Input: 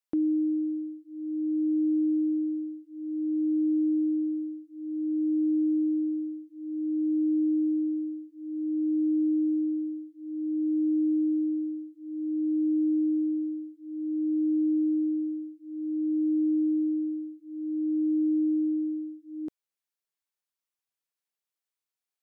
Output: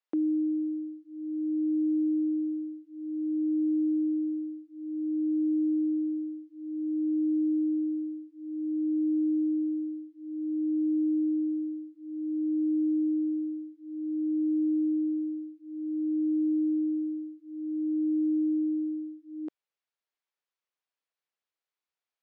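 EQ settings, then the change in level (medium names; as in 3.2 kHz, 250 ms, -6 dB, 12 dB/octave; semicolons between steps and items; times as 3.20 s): high-pass 350 Hz; distance through air 150 m; +3.0 dB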